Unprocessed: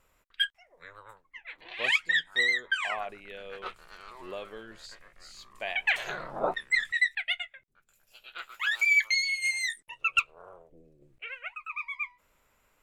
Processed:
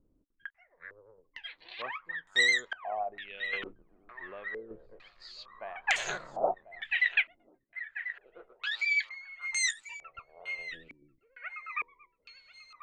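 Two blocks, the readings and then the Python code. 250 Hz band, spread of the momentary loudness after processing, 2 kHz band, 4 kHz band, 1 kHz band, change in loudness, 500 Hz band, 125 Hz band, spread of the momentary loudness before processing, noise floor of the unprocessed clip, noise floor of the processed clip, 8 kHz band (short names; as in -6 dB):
-3.0 dB, 22 LU, -4.0 dB, -4.0 dB, -1.0 dB, -4.0 dB, 0.0 dB, n/a, 20 LU, -70 dBFS, -74 dBFS, +3.0 dB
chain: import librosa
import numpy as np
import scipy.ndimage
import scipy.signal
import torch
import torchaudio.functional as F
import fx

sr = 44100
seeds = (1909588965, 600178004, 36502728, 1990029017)

y = fx.chopper(x, sr, hz=0.85, depth_pct=60, duty_pct=25)
y = fx.echo_thinned(y, sr, ms=1040, feedback_pct=46, hz=1000.0, wet_db=-14)
y = fx.filter_held_lowpass(y, sr, hz=2.2, low_hz=290.0, high_hz=7000.0)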